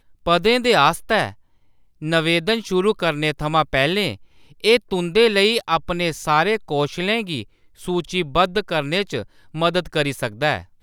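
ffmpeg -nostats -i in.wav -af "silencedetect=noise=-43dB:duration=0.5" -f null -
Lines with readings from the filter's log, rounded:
silence_start: 1.34
silence_end: 2.01 | silence_duration: 0.67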